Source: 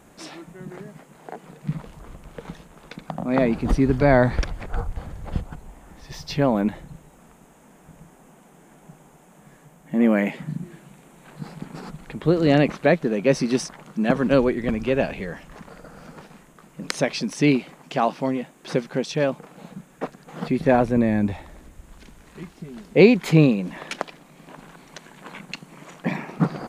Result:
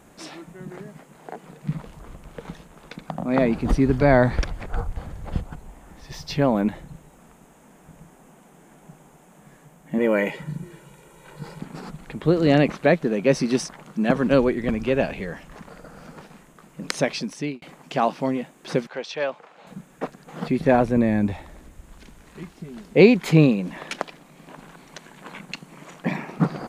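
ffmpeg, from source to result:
-filter_complex "[0:a]asettb=1/sr,asplit=3[a][b][c];[a]atrim=end=9.984[d];[b]atrim=start=9.98:end=11.6,asetpts=PTS-STARTPTS,afade=t=in:d=0.004:c=qsin,afade=t=out:st=1.616:d=0.004:c=qsin,aecho=1:1:2.1:0.65,atrim=end_sample=71442[e];[c]atrim=start=11.596[f];[d][e]acrossfade=d=0.004:c1=hsin:c2=qsin[g];[g][f]acrossfade=d=0.004:c1=qsin:c2=hsin,asettb=1/sr,asplit=3[h][i][j];[h]atrim=end=18.874[k];[i]atrim=start=18.87:end=19.67,asetpts=PTS-STARTPTS,afade=t=in:d=0.004:c=qsin,afade=t=out:st=0.796:d=0.004:c=qsin,acrossover=split=480 5500:gain=0.112 1 0.1[l][m][n];[l][m][n]amix=inputs=3:normalize=0[o];[j]atrim=start=19.666[p];[k][o]acrossfade=d=0.004:c1=hsin:c2=qsin[q];[q][p]acrossfade=d=0.004:c1=qsin:c2=hsin,asplit=2[r][s];[r]atrim=end=17.62,asetpts=PTS-STARTPTS,afade=t=out:st=17.1:d=0.52[t];[s]atrim=start=17.62,asetpts=PTS-STARTPTS,afade=t=in:d=0.004:c=hsin[u];[t][u]concat=n=2:v=0:a=1"

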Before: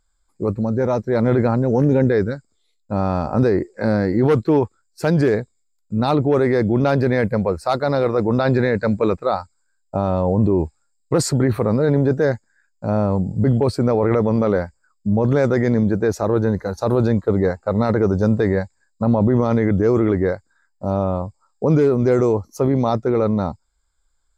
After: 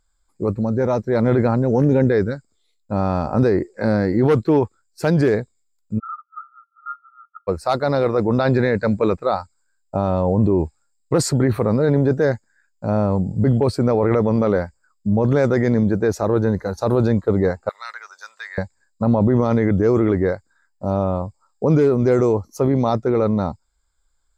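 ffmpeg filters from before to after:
-filter_complex "[0:a]asplit=3[a][b][c];[a]afade=t=out:st=5.98:d=0.02[d];[b]asuperpass=centerf=1300:order=20:qfactor=6.7,afade=t=in:st=5.98:d=0.02,afade=t=out:st=7.47:d=0.02[e];[c]afade=t=in:st=7.47:d=0.02[f];[d][e][f]amix=inputs=3:normalize=0,asettb=1/sr,asplit=3[g][h][i];[g]atrim=end=17.694[j];[h]atrim=start=17.69:end=18.58,asetpts=PTS-STARTPTS,afade=t=in:d=0.004:c=qsin,afade=t=out:st=0.886:d=0.004:c=qsin,highpass=f=1.4k:w=0.5412,highpass=f=1.4k:w=1.3066[k];[i]atrim=start=18.576[l];[j][k]acrossfade=d=0.004:c1=hsin:c2=qsin[m];[m][l]acrossfade=d=0.004:c1=qsin:c2=hsin"

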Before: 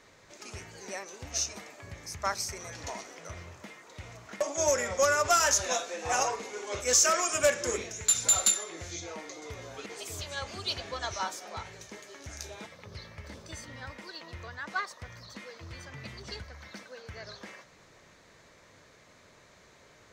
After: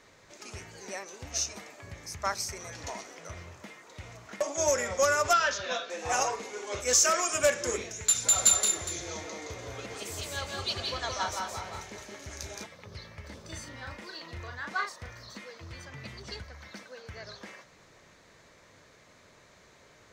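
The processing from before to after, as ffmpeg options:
-filter_complex "[0:a]asettb=1/sr,asplit=3[a][b][c];[a]atrim=end=5.334[d];[b]atrim=start=5.33:end=5.9,asetpts=PTS-STARTPTS,afade=t=in:d=0.004:c=qsin,afade=t=out:st=0.566:d=0.004:c=qsin,highpass=120,equalizer=f=320:t=q:w=4:g=-7,equalizer=f=840:t=q:w=4:g=-10,equalizer=f=1.5k:t=q:w=4:g=4,equalizer=f=2.1k:t=q:w=4:g=-3,equalizer=f=3.4k:t=q:w=4:g=4,lowpass=f=4.5k:w=0.5412,lowpass=f=4.5k:w=1.3066[e];[c]atrim=start=5.896[f];[d][e]acrossfade=d=0.004:c1=hsin:c2=qsin[g];[g][f]acrossfade=d=0.004:c1=qsin:c2=hsin,asettb=1/sr,asplit=3[h][i][j];[h]atrim=end=8.214[k];[i]atrim=start=8.21:end=12.64,asetpts=PTS-STARTPTS,afade=t=in:d=0.004:c=qsin,afade=t=out:st=4.426:d=0.004:c=qsin,aecho=1:1:169|203|409:0.668|0.398|0.211,atrim=end_sample=195363[l];[j]atrim=start=12.636[m];[k][l]acrossfade=d=0.004:c1=hsin:c2=qsin[n];[n][m]acrossfade=d=0.004:c1=qsin:c2=hsin,asettb=1/sr,asplit=3[o][p][q];[o]atrim=end=13.414[r];[p]atrim=start=13.41:end=15.39,asetpts=PTS-STARTPTS,afade=t=in:d=0.004:c=qsin,afade=t=out:st=1.976:d=0.004:c=qsin,asplit=2[s][t];[t]adelay=37,volume=-4dB[u];[s][u]amix=inputs=2:normalize=0,atrim=end_sample=87318[v];[q]atrim=start=15.386[w];[r][v]acrossfade=d=0.004:c1=hsin:c2=qsin[x];[x][w]acrossfade=d=0.004:c1=qsin:c2=hsin"

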